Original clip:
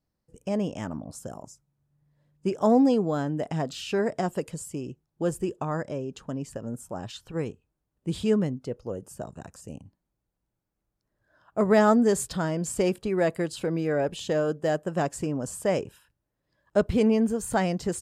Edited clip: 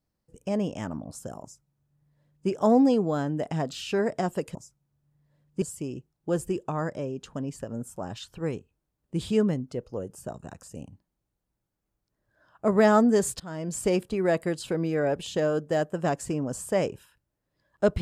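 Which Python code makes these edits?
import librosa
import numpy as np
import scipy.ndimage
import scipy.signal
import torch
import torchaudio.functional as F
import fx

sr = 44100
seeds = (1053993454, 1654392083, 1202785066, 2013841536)

y = fx.edit(x, sr, fx.duplicate(start_s=1.42, length_s=1.07, to_s=4.55),
    fx.fade_in_from(start_s=12.33, length_s=0.4, floor_db=-21.0), tone=tone)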